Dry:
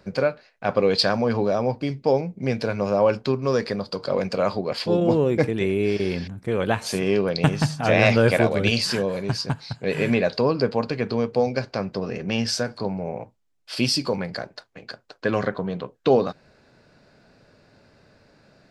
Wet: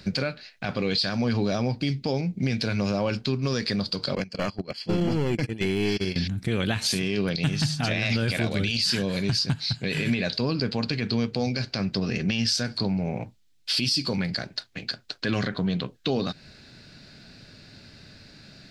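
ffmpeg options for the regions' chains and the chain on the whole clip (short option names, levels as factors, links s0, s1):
-filter_complex "[0:a]asettb=1/sr,asplit=3[s0][s1][s2];[s0]atrim=end=4.154[s3];[s1]atrim=start=4.15:end=6.16,asetpts=PTS-STARTPTS,afade=t=in:d=0.004:c=qsin,afade=t=out:st=2.006:d=0.004:c=qsin,agate=range=0.0891:threshold=0.0631:ratio=16:release=100:detection=peak,aeval=exprs='clip(val(0),-1,0.1)':c=same,asuperstop=centerf=3700:order=8:qfactor=6.9[s4];[s2]atrim=start=6.156[s5];[s3][s4]acrossfade=d=0.004:c1=hsin:c2=qsin[s6];[s6][s5]acrossfade=d=0.004:c1=qsin:c2=hsin,equalizer=f=500:t=o:w=1:g=-10,equalizer=f=1000:t=o:w=1:g=-9,equalizer=f=4000:t=o:w=1:g=7,acompressor=threshold=0.02:ratio=2,alimiter=limit=0.0631:level=0:latency=1:release=21,volume=2.82"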